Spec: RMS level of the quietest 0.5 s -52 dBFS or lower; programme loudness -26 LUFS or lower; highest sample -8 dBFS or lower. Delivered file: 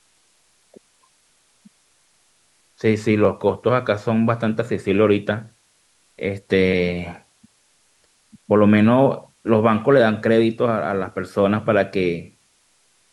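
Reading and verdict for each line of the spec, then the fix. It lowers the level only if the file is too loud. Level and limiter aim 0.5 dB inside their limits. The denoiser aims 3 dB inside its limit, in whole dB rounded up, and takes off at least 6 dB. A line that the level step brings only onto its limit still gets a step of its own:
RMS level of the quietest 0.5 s -61 dBFS: pass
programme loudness -19.0 LUFS: fail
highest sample -4.0 dBFS: fail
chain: trim -7.5 dB

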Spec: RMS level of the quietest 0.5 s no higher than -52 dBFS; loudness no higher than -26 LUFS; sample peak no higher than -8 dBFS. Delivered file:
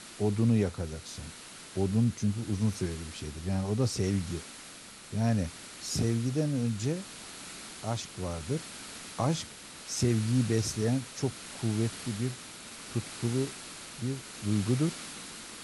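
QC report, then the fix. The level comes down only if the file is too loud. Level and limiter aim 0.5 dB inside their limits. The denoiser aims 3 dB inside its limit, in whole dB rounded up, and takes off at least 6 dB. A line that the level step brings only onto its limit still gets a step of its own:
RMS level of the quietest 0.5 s -48 dBFS: fail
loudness -32.0 LUFS: pass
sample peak -15.0 dBFS: pass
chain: noise reduction 7 dB, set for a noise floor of -48 dBFS

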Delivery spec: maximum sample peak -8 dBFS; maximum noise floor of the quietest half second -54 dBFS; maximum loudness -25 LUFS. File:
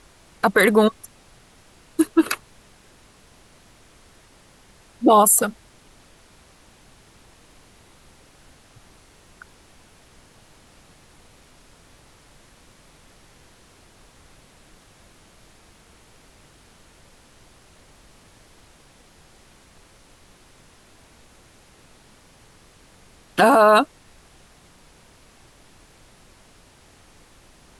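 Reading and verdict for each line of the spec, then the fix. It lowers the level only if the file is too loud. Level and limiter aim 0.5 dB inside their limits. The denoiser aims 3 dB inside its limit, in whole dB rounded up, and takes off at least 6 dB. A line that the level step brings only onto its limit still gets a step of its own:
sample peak -6.0 dBFS: fail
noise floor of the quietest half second -52 dBFS: fail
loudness -17.5 LUFS: fail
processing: trim -8 dB

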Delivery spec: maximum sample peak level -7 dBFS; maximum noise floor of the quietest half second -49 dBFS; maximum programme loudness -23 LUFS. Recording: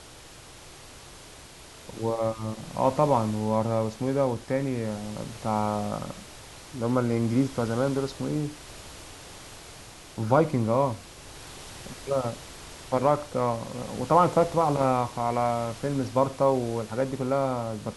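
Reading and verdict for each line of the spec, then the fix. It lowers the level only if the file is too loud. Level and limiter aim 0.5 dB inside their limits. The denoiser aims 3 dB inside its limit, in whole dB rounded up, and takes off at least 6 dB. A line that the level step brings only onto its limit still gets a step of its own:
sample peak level -7.5 dBFS: pass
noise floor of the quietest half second -47 dBFS: fail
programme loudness -27.0 LUFS: pass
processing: noise reduction 6 dB, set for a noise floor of -47 dBFS

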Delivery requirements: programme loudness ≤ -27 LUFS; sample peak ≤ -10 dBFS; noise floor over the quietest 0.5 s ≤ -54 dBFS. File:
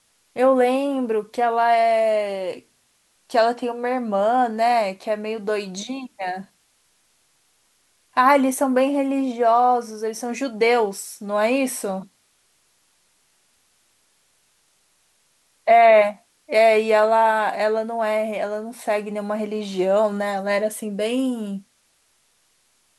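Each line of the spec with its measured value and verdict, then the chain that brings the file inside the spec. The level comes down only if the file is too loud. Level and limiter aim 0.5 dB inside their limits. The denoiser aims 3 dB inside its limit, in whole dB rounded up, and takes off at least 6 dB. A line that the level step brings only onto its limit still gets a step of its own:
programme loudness -20.5 LUFS: fail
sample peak -4.5 dBFS: fail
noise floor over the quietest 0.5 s -64 dBFS: pass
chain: trim -7 dB

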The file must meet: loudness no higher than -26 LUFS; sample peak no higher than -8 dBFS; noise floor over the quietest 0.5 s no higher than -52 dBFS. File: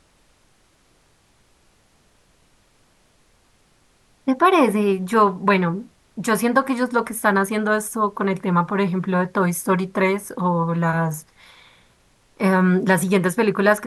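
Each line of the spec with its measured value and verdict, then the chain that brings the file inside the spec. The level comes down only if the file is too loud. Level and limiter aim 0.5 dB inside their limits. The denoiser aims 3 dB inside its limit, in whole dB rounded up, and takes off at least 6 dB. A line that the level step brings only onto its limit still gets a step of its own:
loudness -20.0 LUFS: fail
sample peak -3.5 dBFS: fail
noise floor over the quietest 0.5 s -59 dBFS: pass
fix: trim -6.5 dB

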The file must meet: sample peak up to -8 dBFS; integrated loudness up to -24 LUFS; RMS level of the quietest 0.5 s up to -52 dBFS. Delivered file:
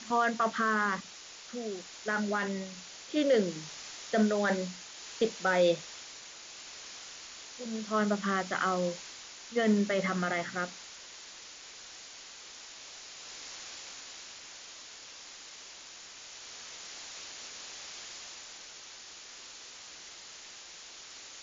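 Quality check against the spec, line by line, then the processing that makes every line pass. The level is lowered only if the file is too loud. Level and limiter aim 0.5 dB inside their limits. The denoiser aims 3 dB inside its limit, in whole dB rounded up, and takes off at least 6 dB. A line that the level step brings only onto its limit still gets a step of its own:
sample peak -15.0 dBFS: pass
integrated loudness -33.0 LUFS: pass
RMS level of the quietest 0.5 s -49 dBFS: fail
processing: noise reduction 6 dB, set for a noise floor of -49 dBFS

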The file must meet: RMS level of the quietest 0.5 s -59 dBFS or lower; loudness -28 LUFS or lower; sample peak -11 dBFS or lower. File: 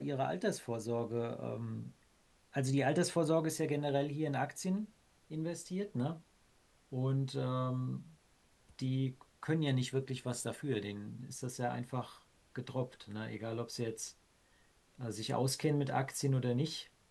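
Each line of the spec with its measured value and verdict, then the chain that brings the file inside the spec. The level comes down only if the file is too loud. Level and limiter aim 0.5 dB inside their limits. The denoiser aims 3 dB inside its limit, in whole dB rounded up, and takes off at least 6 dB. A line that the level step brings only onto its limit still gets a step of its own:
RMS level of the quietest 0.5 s -69 dBFS: pass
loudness -37.5 LUFS: pass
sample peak -18.5 dBFS: pass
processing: none needed

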